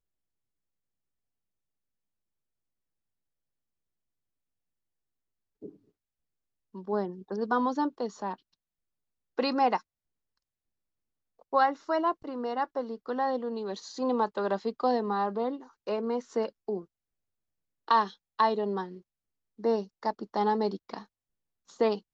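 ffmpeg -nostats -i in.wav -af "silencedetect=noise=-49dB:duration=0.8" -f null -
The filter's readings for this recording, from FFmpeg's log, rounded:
silence_start: 0.00
silence_end: 5.62 | silence_duration: 5.62
silence_start: 5.75
silence_end: 6.74 | silence_duration: 1.00
silence_start: 8.36
silence_end: 9.38 | silence_duration: 1.02
silence_start: 9.81
silence_end: 11.41 | silence_duration: 1.61
silence_start: 16.85
silence_end: 17.88 | silence_duration: 1.03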